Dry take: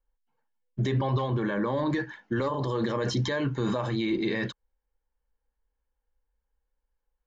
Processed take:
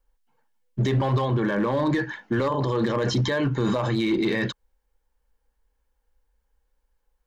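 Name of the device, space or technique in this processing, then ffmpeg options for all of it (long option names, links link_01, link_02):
clipper into limiter: -filter_complex "[0:a]asettb=1/sr,asplit=3[link_01][link_02][link_03];[link_01]atrim=end=2.544[link_04];[link_02]atrim=start=2.54:end=3.65,asetpts=PTS-STARTPTS,afade=type=in:duration=0.004:curve=qsin,afade=type=out:start_time=1.106:duration=0.004:curve=qsin,highshelf=frequency=5800:gain=-4.5[link_05];[link_03]atrim=start=3.646[link_06];[link_04][link_05]acrossfade=duration=0.004:curve1=hsin:curve2=qsin[link_07];[link_07][link_06]acrossfade=duration=0.004:curve1=qsin:curve2=hsin,asoftclip=type=hard:threshold=-21.5dB,alimiter=level_in=1.5dB:limit=-24dB:level=0:latency=1:release=85,volume=-1.5dB,volume=8.5dB"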